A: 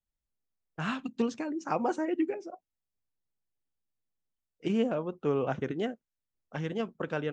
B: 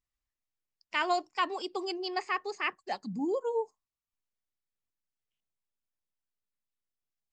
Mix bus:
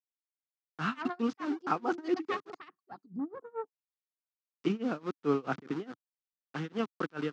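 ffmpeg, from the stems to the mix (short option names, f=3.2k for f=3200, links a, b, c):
-filter_complex "[0:a]highpass=f=260:p=1,aeval=exprs='val(0)*gte(abs(val(0)),0.01)':c=same,volume=0dB[a];[1:a]afwtdn=0.01,aeval=exprs='0.158*(cos(1*acos(clip(val(0)/0.158,-1,1)))-cos(1*PI/2))+0.0316*(cos(4*acos(clip(val(0)/0.158,-1,1)))-cos(4*PI/2))':c=same,volume=-7dB[b];[a][b]amix=inputs=2:normalize=0,lowshelf=f=310:g=8,tremolo=f=4.7:d=0.95,highpass=f=130:w=0.5412,highpass=f=130:w=1.3066,equalizer=f=290:t=q:w=4:g=4,equalizer=f=580:t=q:w=4:g=-8,equalizer=f=1.3k:t=q:w=4:g=8,lowpass=f=5.9k:w=0.5412,lowpass=f=5.9k:w=1.3066"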